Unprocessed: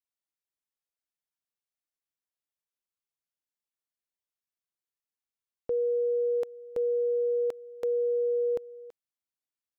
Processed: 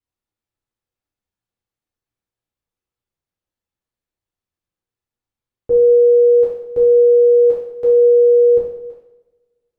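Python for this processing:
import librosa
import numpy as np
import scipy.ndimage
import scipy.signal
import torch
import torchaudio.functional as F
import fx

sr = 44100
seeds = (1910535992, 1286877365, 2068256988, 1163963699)

y = fx.tilt_eq(x, sr, slope=-3.0)
y = fx.rev_double_slope(y, sr, seeds[0], early_s=0.73, late_s=2.2, knee_db=-25, drr_db=-7.5)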